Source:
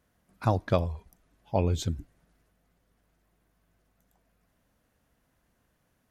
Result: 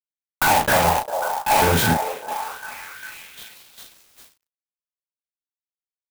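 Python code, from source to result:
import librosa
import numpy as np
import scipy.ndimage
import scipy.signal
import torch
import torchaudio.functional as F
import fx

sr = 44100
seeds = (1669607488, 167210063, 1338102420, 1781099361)

y = fx.spec_steps(x, sr, hold_ms=50)
y = scipy.signal.sosfilt(scipy.signal.butter(4, 130.0, 'highpass', fs=sr, output='sos'), y)
y = fx.band_shelf(y, sr, hz=1200.0, db=8.5, octaves=2.6)
y = fx.small_body(y, sr, hz=(860.0, 1500.0), ring_ms=30, db=14)
y = fx.fuzz(y, sr, gain_db=47.0, gate_db=-42.0)
y = fx.doubler(y, sr, ms=36.0, db=-5.5)
y = fx.echo_stepped(y, sr, ms=401, hz=680.0, octaves=0.7, feedback_pct=70, wet_db=-5.0)
y = fx.clock_jitter(y, sr, seeds[0], jitter_ms=0.045)
y = y * librosa.db_to_amplitude(-3.0)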